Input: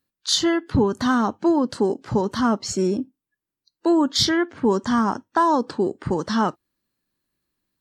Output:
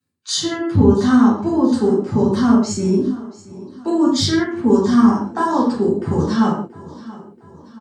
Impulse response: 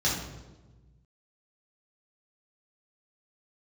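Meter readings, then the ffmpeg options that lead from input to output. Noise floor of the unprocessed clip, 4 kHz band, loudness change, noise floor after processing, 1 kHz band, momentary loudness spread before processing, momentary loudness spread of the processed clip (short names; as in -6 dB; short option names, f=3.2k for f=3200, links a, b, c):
under -85 dBFS, -0.5 dB, +5.0 dB, -45 dBFS, +0.5 dB, 6 LU, 19 LU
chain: -filter_complex "[0:a]aecho=1:1:680|1360|2040|2720:0.112|0.055|0.0269|0.0132[a];[1:a]atrim=start_sample=2205,afade=t=out:st=0.31:d=0.01,atrim=end_sample=14112,asetrate=61740,aresample=44100[b];[a][b]afir=irnorm=-1:irlink=0,volume=-7.5dB"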